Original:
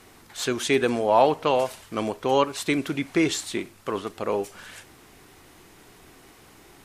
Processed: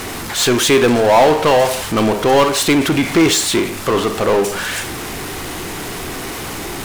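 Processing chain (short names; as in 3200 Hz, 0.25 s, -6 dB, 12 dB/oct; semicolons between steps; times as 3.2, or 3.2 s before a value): Schroeder reverb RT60 0.43 s, combs from 33 ms, DRR 13.5 dB; power-law curve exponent 0.5; gain +3.5 dB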